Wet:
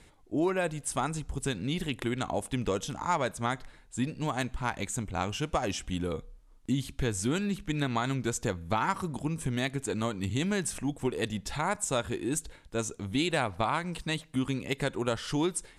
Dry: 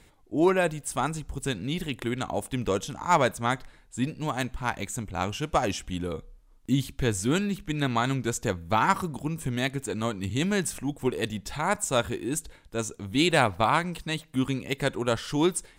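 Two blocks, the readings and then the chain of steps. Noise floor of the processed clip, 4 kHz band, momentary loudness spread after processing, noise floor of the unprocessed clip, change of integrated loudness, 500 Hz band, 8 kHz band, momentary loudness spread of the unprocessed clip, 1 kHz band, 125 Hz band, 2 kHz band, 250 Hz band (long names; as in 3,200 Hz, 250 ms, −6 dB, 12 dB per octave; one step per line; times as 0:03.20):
−57 dBFS, −4.0 dB, 5 LU, −57 dBFS, −4.0 dB, −4.5 dB, −2.0 dB, 10 LU, −5.0 dB, −2.5 dB, −4.5 dB, −3.0 dB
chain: Butterworth low-pass 12,000 Hz 36 dB per octave
downward compressor 3 to 1, threshold −26 dBFS, peak gain reduction 8.5 dB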